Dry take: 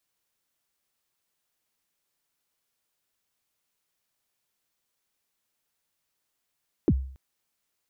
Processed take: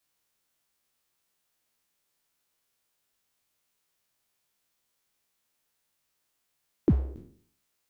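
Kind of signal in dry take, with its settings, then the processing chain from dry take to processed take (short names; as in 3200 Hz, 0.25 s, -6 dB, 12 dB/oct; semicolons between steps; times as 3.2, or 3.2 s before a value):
kick drum length 0.28 s, from 410 Hz, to 66 Hz, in 51 ms, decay 0.53 s, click off, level -14.5 dB
spectral trails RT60 0.57 s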